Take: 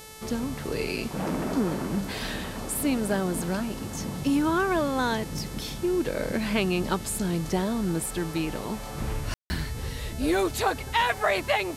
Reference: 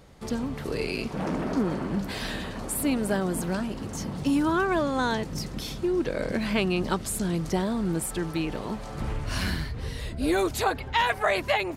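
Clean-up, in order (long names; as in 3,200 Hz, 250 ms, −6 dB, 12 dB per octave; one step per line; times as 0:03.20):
hum removal 436.6 Hz, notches 31
ambience match 0:09.34–0:09.50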